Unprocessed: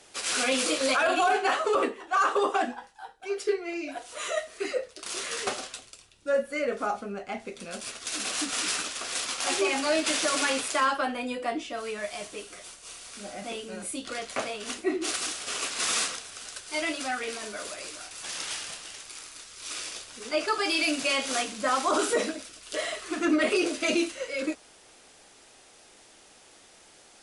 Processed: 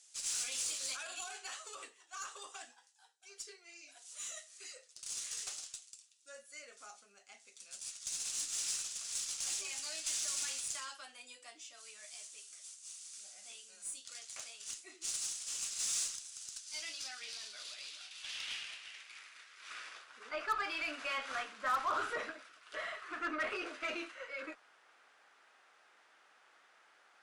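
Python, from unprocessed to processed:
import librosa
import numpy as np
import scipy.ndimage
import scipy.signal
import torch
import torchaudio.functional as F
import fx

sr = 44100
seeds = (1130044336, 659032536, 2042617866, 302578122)

y = fx.filter_sweep_bandpass(x, sr, from_hz=7100.0, to_hz=1400.0, start_s=16.38, end_s=20.04, q=1.9)
y = fx.cheby_harmonics(y, sr, harmonics=(5, 6), levels_db=(-23, -28), full_scale_db=-21.5)
y = y * 10.0 ** (-4.5 / 20.0)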